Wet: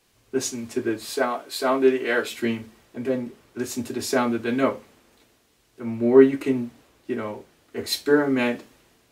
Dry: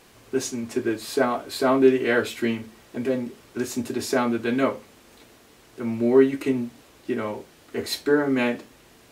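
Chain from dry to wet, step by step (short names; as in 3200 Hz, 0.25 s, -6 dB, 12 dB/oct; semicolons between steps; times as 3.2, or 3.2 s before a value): 1.13–2.32 HPF 390 Hz 6 dB/oct; three-band expander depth 40%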